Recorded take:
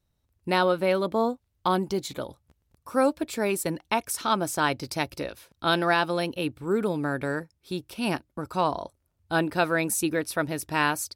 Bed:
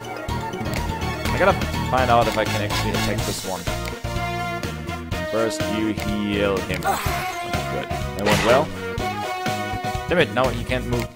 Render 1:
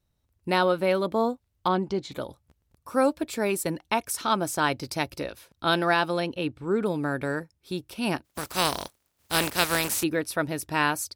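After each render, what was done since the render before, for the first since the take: 1.68–2.12 air absorption 120 m; 6.2–6.86 air absorption 55 m; 8.24–10.02 spectral contrast lowered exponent 0.37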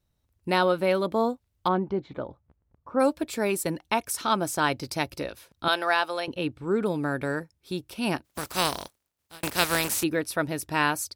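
1.68–2.99 LPF 2000 Hz -> 1200 Hz; 5.68–6.28 HPF 540 Hz; 8.56–9.43 fade out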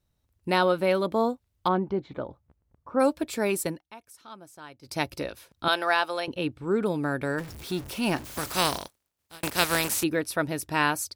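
3.65–4.99 dip -20.5 dB, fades 0.17 s; 7.38–8.78 zero-crossing step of -36 dBFS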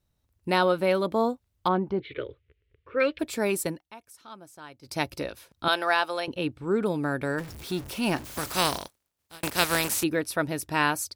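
2–3.19 EQ curve 110 Hz 0 dB, 210 Hz -18 dB, 430 Hz +10 dB, 790 Hz -21 dB, 2000 Hz +14 dB, 3000 Hz +15 dB, 8300 Hz -24 dB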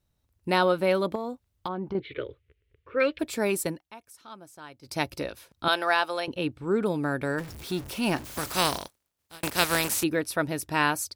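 1.15–1.95 compressor, threshold -28 dBFS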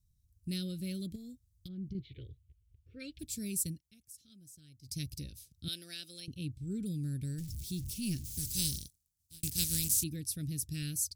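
Chebyshev band-stop 130–6300 Hz, order 2; low shelf 110 Hz +5 dB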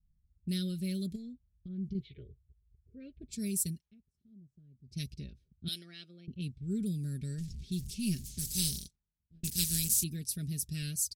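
comb 4.9 ms, depth 60%; low-pass opened by the level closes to 330 Hz, open at -33 dBFS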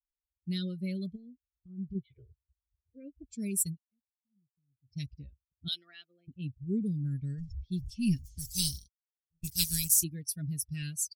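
per-bin expansion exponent 2; AGC gain up to 6.5 dB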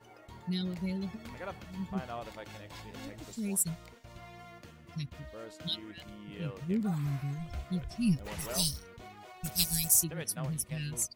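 add bed -24.5 dB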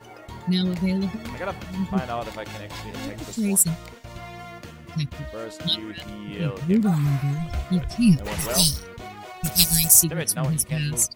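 gain +11.5 dB; limiter -1 dBFS, peak gain reduction 1.5 dB

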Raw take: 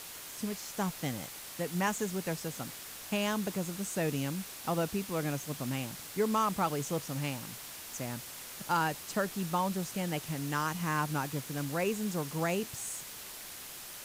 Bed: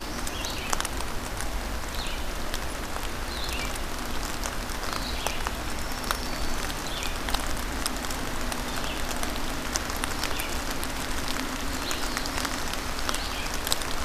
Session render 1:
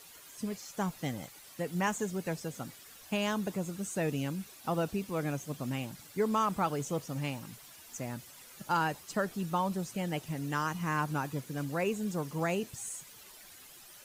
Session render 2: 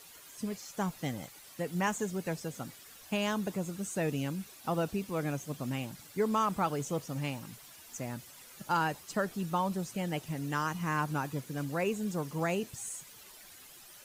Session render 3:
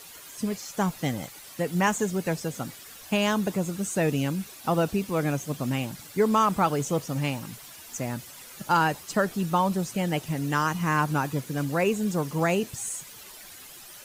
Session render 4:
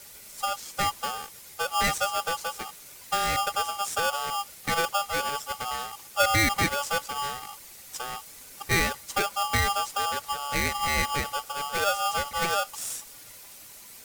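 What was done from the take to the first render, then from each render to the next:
denoiser 11 dB, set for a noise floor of -46 dBFS
nothing audible
gain +7.5 dB
fixed phaser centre 450 Hz, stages 8; polarity switched at an audio rate 1000 Hz

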